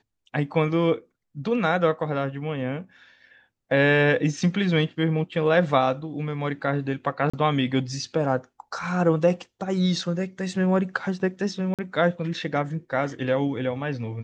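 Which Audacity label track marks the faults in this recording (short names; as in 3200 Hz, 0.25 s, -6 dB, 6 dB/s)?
7.300000	7.330000	gap 35 ms
11.740000	11.790000	gap 47 ms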